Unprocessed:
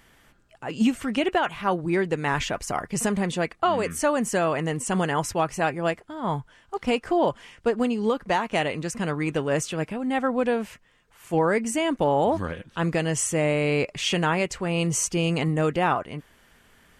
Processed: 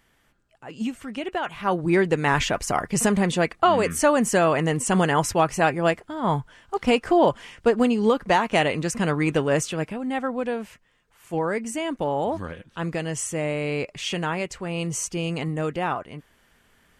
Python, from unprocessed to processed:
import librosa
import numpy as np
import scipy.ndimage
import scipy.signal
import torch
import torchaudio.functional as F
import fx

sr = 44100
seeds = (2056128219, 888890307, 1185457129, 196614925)

y = fx.gain(x, sr, db=fx.line((1.24, -7.0), (1.89, 4.0), (9.35, 4.0), (10.38, -3.5)))